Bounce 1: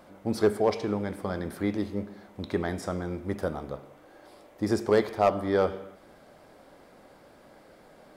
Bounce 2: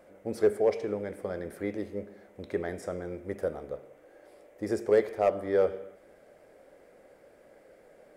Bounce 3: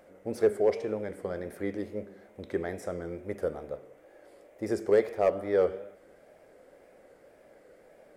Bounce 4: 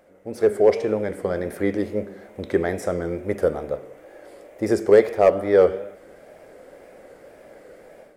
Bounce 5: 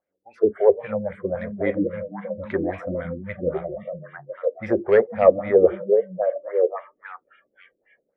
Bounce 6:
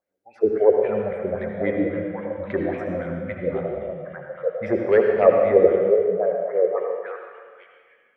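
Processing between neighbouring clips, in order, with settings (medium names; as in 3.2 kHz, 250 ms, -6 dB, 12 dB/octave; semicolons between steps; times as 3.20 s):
graphic EQ 125/250/500/1000/2000/4000/8000 Hz -3/-3/+10/-7/+6/-7/+3 dB; trim -6.5 dB
wow and flutter 70 cents
level rider gain up to 10.5 dB
repeats whose band climbs or falls 501 ms, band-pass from 170 Hz, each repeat 1.4 oct, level 0 dB; LFO low-pass sine 3.7 Hz 300–2700 Hz; spectral noise reduction 27 dB; trim -3 dB
reverberation RT60 1.7 s, pre-delay 65 ms, DRR 1.5 dB; trim -1 dB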